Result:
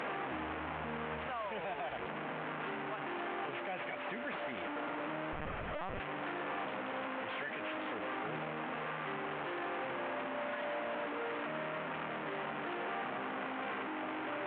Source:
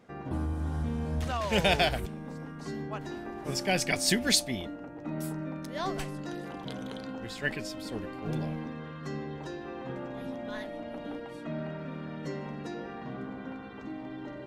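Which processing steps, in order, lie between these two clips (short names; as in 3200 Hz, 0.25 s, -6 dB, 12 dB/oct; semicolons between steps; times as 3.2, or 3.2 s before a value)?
delta modulation 16 kbps, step -29 dBFS; Bessel high-pass 1100 Hz, order 2; tilt -4.5 dB/oct; vocal rider within 4 dB 0.5 s; limiter -35.5 dBFS, peak gain reduction 10 dB; 5.33–6 LPC vocoder at 8 kHz pitch kept; gain +4 dB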